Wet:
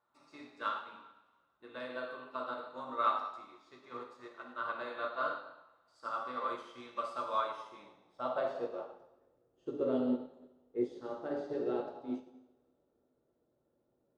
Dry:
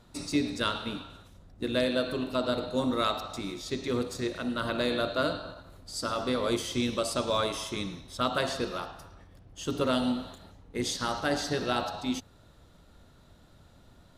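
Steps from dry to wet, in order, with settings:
coupled-rooms reverb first 0.97 s, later 2.6 s, DRR −1 dB
band-pass filter sweep 1,100 Hz → 420 Hz, 0:07.36–0:09.49
expander for the loud parts 1.5 to 1, over −51 dBFS

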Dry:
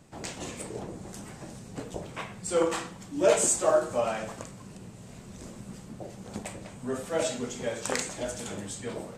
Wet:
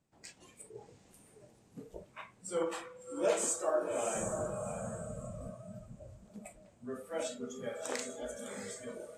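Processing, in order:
0:04.15–0:05.51: low-shelf EQ 380 Hz +11 dB
feedback delay with all-pass diffusion 687 ms, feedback 43%, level −5 dB
spring reverb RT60 3.8 s, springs 44 ms, chirp 65 ms, DRR 15.5 dB
noise reduction from a noise print of the clip's start 14 dB
level −9 dB

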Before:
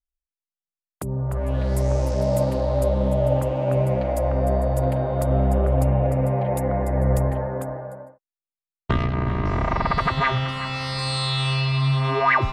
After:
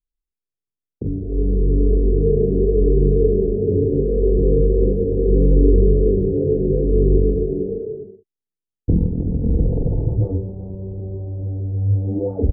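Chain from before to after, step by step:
elliptic low-pass filter 610 Hz, stop band 80 dB
pitch shifter −5.5 semitones
ambience of single reflections 28 ms −7 dB, 46 ms −3.5 dB
level +5.5 dB

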